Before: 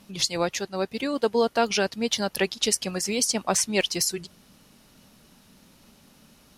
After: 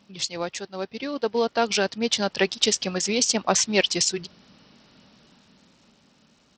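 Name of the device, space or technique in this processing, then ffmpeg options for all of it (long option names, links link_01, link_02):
Bluetooth headset: -af "highpass=frequency=110:poles=1,dynaudnorm=framelen=250:gausssize=13:maxgain=14dB,aresample=16000,aresample=44100,volume=-4dB" -ar 44100 -c:a sbc -b:a 64k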